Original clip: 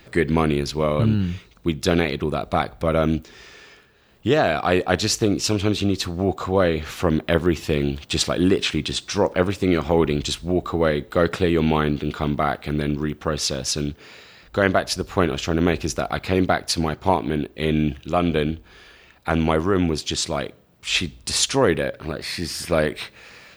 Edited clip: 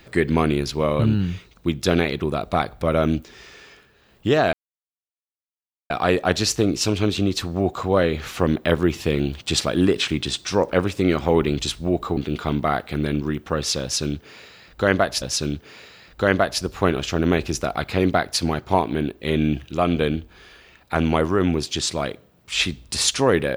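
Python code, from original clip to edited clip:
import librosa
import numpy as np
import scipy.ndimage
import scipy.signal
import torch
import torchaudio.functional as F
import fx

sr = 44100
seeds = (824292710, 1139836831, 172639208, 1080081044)

y = fx.edit(x, sr, fx.insert_silence(at_s=4.53, length_s=1.37),
    fx.cut(start_s=10.8, length_s=1.12),
    fx.repeat(start_s=13.57, length_s=1.4, count=2), tone=tone)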